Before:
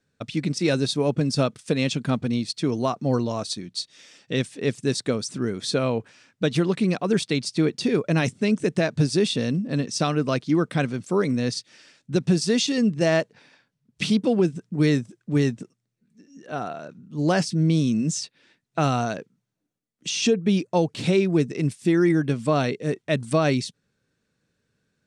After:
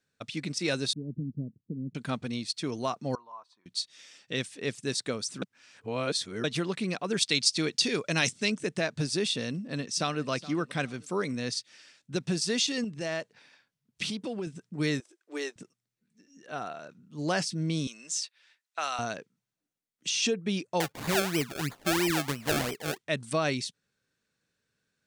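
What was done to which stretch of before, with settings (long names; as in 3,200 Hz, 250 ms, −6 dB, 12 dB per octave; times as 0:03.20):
0:00.93–0:01.95: inverse Chebyshev low-pass filter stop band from 1,300 Hz, stop band 70 dB
0:03.15–0:03.66: resonant band-pass 1,000 Hz, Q 8.6
0:05.42–0:06.44: reverse
0:07.21–0:08.50: parametric band 5,700 Hz +9.5 dB 2.3 octaves
0:09.55–0:10.29: delay throw 420 ms, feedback 25%, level −17.5 dB
0:12.84–0:14.47: downward compressor 2.5 to 1, threshold −24 dBFS
0:15.00–0:15.56: elliptic high-pass filter 320 Hz
0:17.87–0:18.99: high-pass filter 830 Hz
0:20.80–0:22.98: sample-and-hold swept by an LFO 31× 3 Hz
whole clip: tilt shelving filter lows −4.5 dB, about 700 Hz; level −6.5 dB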